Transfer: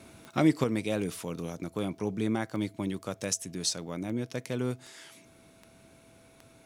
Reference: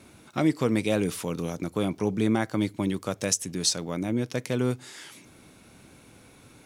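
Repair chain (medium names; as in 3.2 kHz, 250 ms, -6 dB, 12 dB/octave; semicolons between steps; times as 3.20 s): de-click; band-stop 660 Hz, Q 30; trim 0 dB, from 0.64 s +5.5 dB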